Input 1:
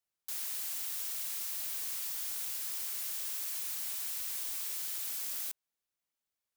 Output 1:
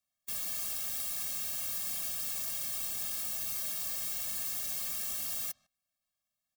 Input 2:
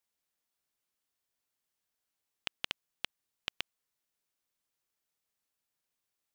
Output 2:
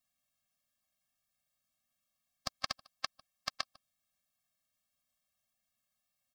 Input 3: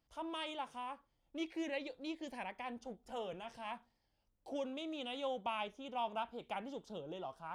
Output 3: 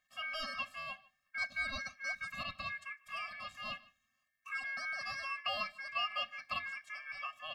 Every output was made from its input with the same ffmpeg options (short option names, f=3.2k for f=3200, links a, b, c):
-filter_complex "[0:a]asplit=2[a][b];[b]adelay=150,highpass=300,lowpass=3.4k,asoftclip=type=hard:threshold=-21.5dB,volume=-22dB[c];[a][c]amix=inputs=2:normalize=0,aeval=exprs='val(0)*sin(2*PI*1900*n/s)':c=same,afftfilt=real='re*eq(mod(floor(b*sr/1024/260),2),0)':imag='im*eq(mod(floor(b*sr/1024/260),2),0)':win_size=1024:overlap=0.75,volume=8dB"